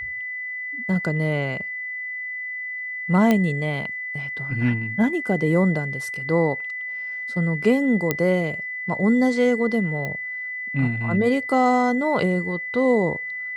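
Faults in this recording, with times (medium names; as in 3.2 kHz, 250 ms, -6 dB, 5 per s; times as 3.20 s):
whine 2 kHz -28 dBFS
3.31 s: pop -7 dBFS
8.11 s: pop -6 dBFS
10.05 s: pop -16 dBFS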